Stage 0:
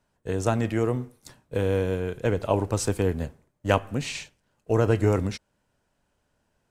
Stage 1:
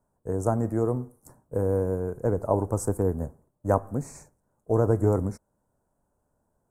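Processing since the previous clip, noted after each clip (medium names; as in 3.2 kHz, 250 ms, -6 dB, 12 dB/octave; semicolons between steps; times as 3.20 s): Chebyshev band-stop 970–9000 Hz, order 2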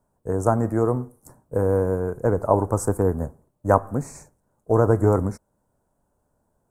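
dynamic bell 1.3 kHz, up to +6 dB, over -42 dBFS, Q 0.93; trim +3.5 dB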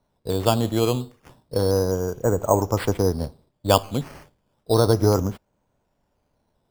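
decimation with a swept rate 9×, swing 60% 0.31 Hz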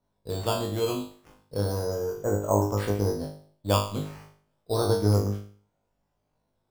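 feedback comb 51 Hz, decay 0.46 s, harmonics all, mix 100%; trim +3 dB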